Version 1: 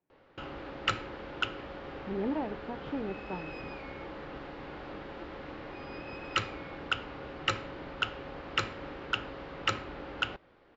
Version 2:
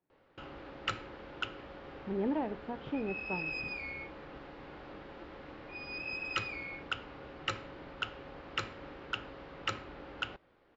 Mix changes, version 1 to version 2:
first sound -5.5 dB; second sound +10.5 dB

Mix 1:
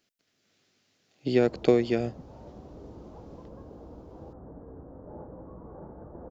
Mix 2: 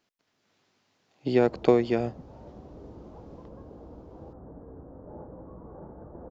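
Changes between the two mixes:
speech: add bell 950 Hz +10 dB 0.67 oct; master: add high shelf 4200 Hz -5.5 dB

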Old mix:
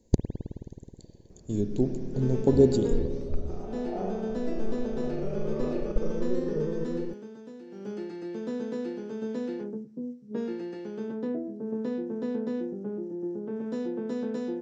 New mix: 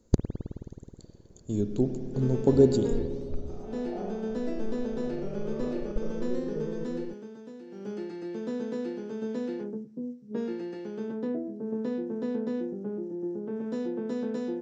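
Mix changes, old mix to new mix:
speech: remove Butterworth band-stop 1300 Hz, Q 1.9; first sound -4.5 dB

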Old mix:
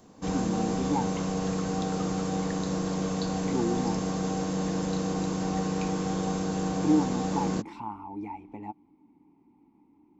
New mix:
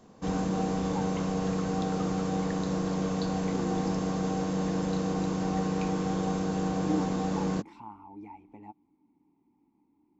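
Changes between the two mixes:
speech -8.0 dB; background: add high shelf 6000 Hz -9 dB

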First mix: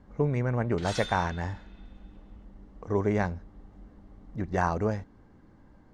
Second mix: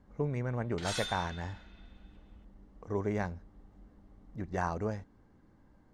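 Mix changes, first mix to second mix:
speech -6.5 dB; master: add high shelf 11000 Hz +11 dB

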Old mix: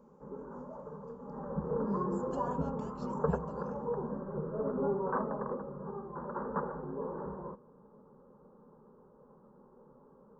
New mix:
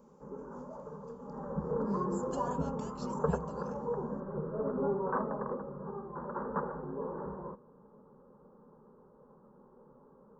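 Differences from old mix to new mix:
speech: add high shelf 2200 Hz +5 dB; master: add high shelf 4400 Hz +8 dB

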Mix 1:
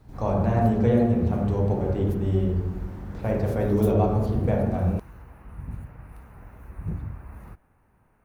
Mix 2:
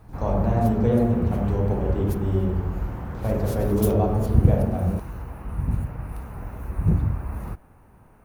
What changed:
background +11.0 dB; master: add bell 1900 Hz -5 dB 1.1 oct

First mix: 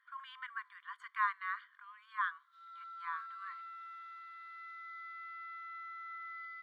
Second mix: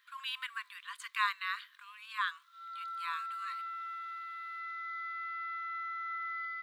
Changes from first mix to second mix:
speech: remove polynomial smoothing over 41 samples; background +7.5 dB

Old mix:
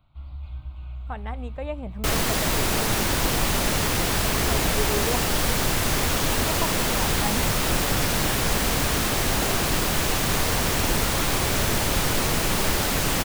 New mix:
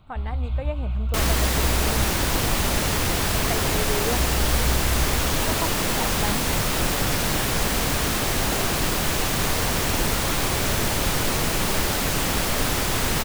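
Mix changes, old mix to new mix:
speech: entry -1.00 s; first sound +9.5 dB; second sound: entry -0.90 s

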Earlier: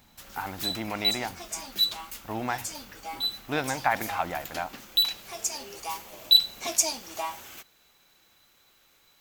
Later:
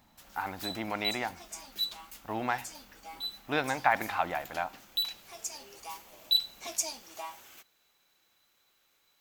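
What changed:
background -8.0 dB; master: add low shelf 220 Hz -6.5 dB

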